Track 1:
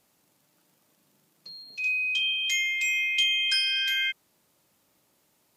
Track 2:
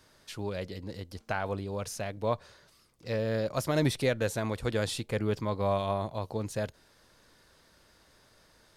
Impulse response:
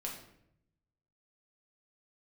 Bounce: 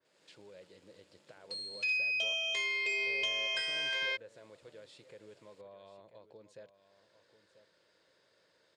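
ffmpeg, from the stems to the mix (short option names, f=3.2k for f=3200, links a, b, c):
-filter_complex "[0:a]aeval=exprs='if(lt(val(0),0),0.251*val(0),val(0))':c=same,acompressor=threshold=-36dB:ratio=3,adelay=50,volume=0dB[a];[1:a]alimiter=level_in=1.5dB:limit=-24dB:level=0:latency=1:release=287,volume=-1.5dB,acompressor=threshold=-51dB:ratio=2,volume=-14dB,asplit=2[b][c];[c]volume=-13.5dB,aecho=0:1:990:1[d];[a][b][d]amix=inputs=3:normalize=0,highpass=210,equalizer=f=240:t=q:w=4:g=-10,equalizer=f=520:t=q:w=4:g=6,equalizer=f=780:t=q:w=4:g=-6,equalizer=f=1.2k:t=q:w=4:g=-5,equalizer=f=6k:t=q:w=4:g=-8,lowpass=f=7.3k:w=0.5412,lowpass=f=7.3k:w=1.3066,dynaudnorm=f=120:g=3:m=7dB,adynamicequalizer=threshold=0.00631:dfrequency=2900:dqfactor=0.7:tfrequency=2900:tqfactor=0.7:attack=5:release=100:ratio=0.375:range=3:mode=cutabove:tftype=highshelf"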